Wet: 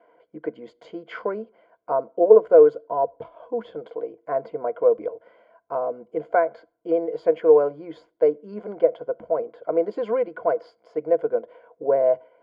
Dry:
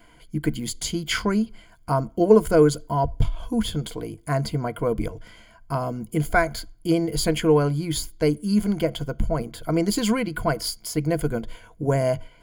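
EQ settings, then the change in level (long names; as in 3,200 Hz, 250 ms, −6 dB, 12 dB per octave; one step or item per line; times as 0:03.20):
high-pass with resonance 510 Hz, resonance Q 4.2
low-pass filter 1,300 Hz 12 dB per octave
high-frequency loss of the air 75 metres
−3.5 dB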